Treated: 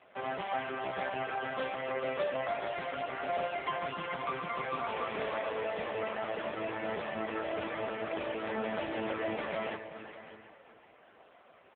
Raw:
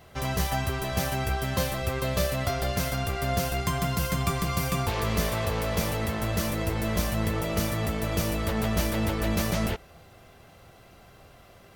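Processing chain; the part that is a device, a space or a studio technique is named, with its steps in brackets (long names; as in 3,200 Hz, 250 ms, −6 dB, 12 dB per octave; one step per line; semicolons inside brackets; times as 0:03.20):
delay with a low-pass on its return 370 ms, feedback 50%, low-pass 3,100 Hz, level −13.5 dB
0:05.49–0:06.00: dynamic equaliser 1,200 Hz, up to −4 dB, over −49 dBFS, Q 4.3
satellite phone (band-pass filter 370–3,200 Hz; single-tap delay 593 ms −14.5 dB; AMR narrowband 5.15 kbit/s 8,000 Hz)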